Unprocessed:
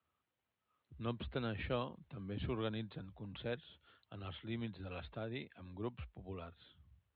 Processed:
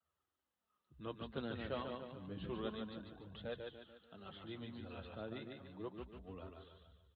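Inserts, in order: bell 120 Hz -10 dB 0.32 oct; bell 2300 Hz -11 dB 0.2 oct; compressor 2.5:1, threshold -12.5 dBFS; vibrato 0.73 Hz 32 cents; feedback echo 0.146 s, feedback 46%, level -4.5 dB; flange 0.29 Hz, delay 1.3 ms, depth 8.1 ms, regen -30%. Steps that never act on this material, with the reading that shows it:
compressor, threshold -12.5 dBFS: input peak -25.0 dBFS

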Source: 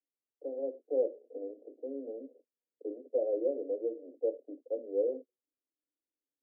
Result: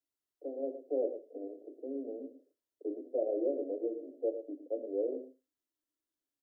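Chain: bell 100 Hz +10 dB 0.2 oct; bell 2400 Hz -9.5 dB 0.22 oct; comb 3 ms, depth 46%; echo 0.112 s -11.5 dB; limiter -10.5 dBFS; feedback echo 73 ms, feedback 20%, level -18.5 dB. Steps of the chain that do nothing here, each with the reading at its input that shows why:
bell 100 Hz: input band starts at 230 Hz; bell 2400 Hz: input band ends at 760 Hz; limiter -10.5 dBFS: input peak -21.5 dBFS

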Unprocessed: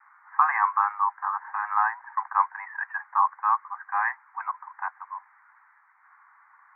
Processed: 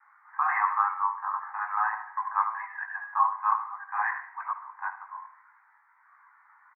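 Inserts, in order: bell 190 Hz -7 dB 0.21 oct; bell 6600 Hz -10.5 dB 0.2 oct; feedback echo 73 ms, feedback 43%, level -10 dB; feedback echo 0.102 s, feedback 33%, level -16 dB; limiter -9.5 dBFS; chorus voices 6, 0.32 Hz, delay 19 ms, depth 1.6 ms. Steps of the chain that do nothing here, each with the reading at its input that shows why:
bell 190 Hz: input band starts at 680 Hz; bell 6600 Hz: input band ends at 2200 Hz

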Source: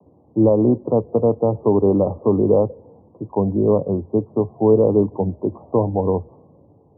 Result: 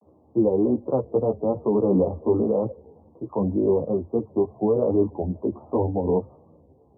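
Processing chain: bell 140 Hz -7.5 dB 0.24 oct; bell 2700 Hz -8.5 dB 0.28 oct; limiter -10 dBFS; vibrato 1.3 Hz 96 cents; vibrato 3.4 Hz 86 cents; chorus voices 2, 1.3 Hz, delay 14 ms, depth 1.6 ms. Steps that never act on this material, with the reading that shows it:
bell 2700 Hz: input band ends at 1100 Hz

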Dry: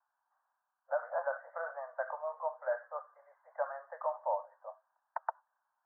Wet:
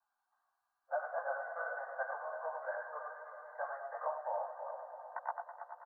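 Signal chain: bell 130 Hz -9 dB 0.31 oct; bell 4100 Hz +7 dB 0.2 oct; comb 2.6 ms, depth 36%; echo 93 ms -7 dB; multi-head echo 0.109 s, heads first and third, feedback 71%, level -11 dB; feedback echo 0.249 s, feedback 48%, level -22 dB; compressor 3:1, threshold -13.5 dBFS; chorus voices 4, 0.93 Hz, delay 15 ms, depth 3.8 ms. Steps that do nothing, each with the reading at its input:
bell 130 Hz: input band starts at 450 Hz; bell 4100 Hz: input band ends at 1800 Hz; compressor, threshold -13.5 dBFS: input peak -19.5 dBFS

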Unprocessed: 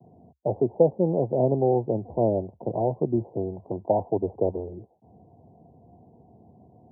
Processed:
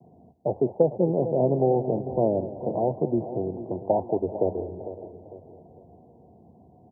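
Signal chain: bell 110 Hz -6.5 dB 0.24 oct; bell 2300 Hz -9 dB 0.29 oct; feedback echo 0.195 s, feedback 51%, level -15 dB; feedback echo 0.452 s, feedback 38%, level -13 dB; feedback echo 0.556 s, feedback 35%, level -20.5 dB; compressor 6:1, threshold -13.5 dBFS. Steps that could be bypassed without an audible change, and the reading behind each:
bell 2300 Hz: input band ends at 1000 Hz

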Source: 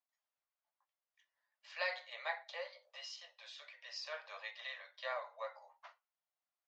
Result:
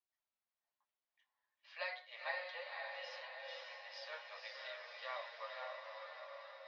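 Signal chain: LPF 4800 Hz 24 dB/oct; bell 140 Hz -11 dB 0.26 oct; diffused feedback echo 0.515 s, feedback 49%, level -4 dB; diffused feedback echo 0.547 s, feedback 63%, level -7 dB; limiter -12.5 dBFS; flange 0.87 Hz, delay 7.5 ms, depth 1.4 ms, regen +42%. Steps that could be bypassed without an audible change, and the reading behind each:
bell 140 Hz: input band starts at 430 Hz; limiter -12.5 dBFS: input peak -23.5 dBFS

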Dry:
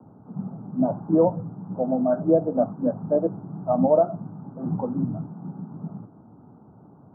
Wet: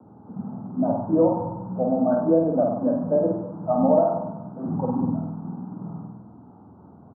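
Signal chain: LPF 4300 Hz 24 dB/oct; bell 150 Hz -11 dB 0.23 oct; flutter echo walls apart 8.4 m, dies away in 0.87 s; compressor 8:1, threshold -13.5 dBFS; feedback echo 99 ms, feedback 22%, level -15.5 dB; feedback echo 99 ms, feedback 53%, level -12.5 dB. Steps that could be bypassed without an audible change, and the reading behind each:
LPF 4300 Hz: input band ends at 1300 Hz

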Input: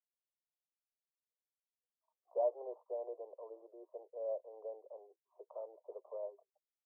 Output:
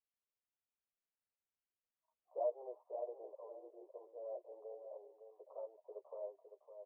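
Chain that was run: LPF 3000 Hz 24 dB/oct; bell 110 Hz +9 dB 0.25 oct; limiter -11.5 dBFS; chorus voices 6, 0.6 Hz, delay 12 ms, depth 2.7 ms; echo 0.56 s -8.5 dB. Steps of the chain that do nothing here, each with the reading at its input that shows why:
LPF 3000 Hz: input band ends at 1000 Hz; bell 110 Hz: input band starts at 320 Hz; limiter -11.5 dBFS: input peak -24.0 dBFS

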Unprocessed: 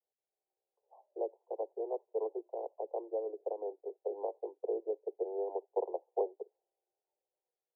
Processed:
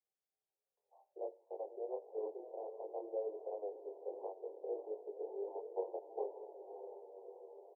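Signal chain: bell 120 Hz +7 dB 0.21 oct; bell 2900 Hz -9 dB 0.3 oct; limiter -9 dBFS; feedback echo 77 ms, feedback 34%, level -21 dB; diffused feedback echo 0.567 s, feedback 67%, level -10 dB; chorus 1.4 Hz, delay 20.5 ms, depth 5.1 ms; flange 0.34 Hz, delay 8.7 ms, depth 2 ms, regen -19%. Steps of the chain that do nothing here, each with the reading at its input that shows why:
bell 120 Hz: input band starts at 300 Hz; bell 2900 Hz: input band ends at 1000 Hz; limiter -9 dBFS: input peak -21.5 dBFS

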